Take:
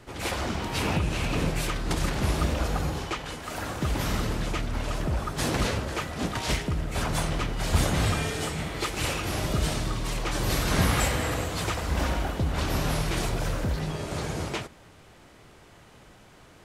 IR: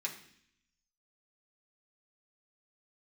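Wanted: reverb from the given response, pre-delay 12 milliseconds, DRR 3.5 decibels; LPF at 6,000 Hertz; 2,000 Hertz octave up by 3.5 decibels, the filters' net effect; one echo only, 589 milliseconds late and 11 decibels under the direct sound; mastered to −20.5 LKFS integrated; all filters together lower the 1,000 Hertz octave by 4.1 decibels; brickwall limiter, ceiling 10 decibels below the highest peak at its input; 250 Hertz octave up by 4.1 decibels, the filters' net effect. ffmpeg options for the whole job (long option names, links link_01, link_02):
-filter_complex "[0:a]lowpass=6000,equalizer=frequency=250:width_type=o:gain=6,equalizer=frequency=1000:width_type=o:gain=-8,equalizer=frequency=2000:width_type=o:gain=6.5,alimiter=limit=-17.5dB:level=0:latency=1,aecho=1:1:589:0.282,asplit=2[link_01][link_02];[1:a]atrim=start_sample=2205,adelay=12[link_03];[link_02][link_03]afir=irnorm=-1:irlink=0,volume=-5dB[link_04];[link_01][link_04]amix=inputs=2:normalize=0,volume=6.5dB"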